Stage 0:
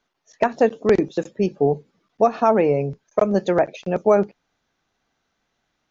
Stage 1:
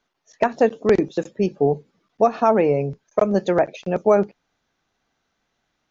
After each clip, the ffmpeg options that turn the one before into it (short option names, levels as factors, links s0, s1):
-af anull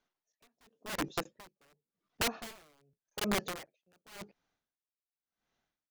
-af "aeval=exprs='(mod(5.31*val(0)+1,2)-1)/5.31':c=same,aeval=exprs='val(0)*pow(10,-38*(0.5-0.5*cos(2*PI*0.9*n/s))/20)':c=same,volume=0.355"